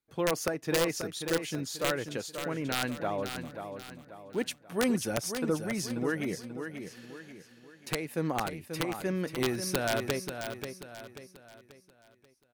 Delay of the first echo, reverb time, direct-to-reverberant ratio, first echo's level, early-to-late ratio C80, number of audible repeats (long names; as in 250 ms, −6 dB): 536 ms, no reverb audible, no reverb audible, −8.0 dB, no reverb audible, 4